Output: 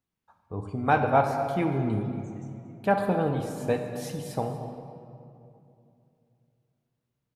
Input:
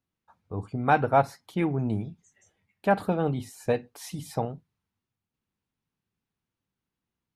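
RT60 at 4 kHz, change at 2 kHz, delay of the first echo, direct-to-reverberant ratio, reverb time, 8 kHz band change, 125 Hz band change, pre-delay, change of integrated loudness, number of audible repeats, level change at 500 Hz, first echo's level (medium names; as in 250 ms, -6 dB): 1.5 s, 0.0 dB, 233 ms, 4.5 dB, 2.6 s, -0.5 dB, +0.5 dB, 25 ms, 0.0 dB, 1, +0.5 dB, -16.0 dB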